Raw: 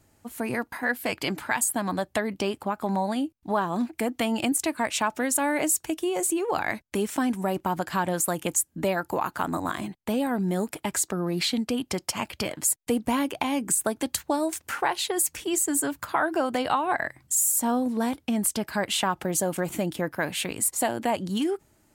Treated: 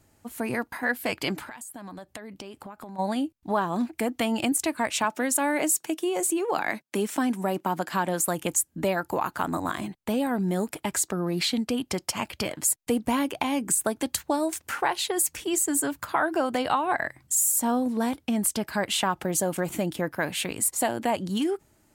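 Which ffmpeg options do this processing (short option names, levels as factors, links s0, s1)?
-filter_complex "[0:a]asplit=3[s0][s1][s2];[s0]afade=t=out:st=1.43:d=0.02[s3];[s1]acompressor=threshold=0.0141:ratio=10:attack=3.2:release=140:knee=1:detection=peak,afade=t=in:st=1.43:d=0.02,afade=t=out:st=2.98:d=0.02[s4];[s2]afade=t=in:st=2.98:d=0.02[s5];[s3][s4][s5]amix=inputs=3:normalize=0,asettb=1/sr,asplit=3[s6][s7][s8];[s6]atrim=end=5.044[s9];[s7]atrim=start=5.04:end=8.22,asetpts=PTS-STARTPTS,afade=t=in:d=0.004:c=qsin,afade=t=out:st=3.176:d=0.004:c=qsin,highpass=f=160:w=0.5412,highpass=f=160:w=1.3066[s10];[s8]atrim=start=8.216[s11];[s9][s10]acrossfade=d=0.004:c1=hsin:c2=qsin[s12];[s12][s11]acrossfade=d=0.004:c1=qsin:c2=hsin"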